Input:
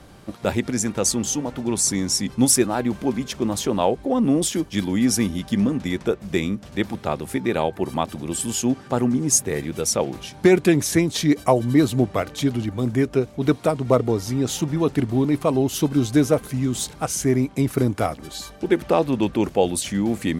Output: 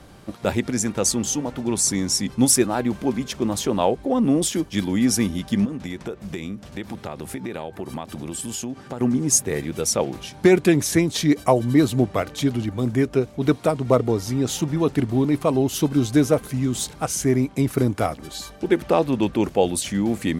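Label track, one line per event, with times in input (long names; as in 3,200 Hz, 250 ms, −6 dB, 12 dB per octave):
5.650000	9.010000	downward compressor, threshold −26 dBFS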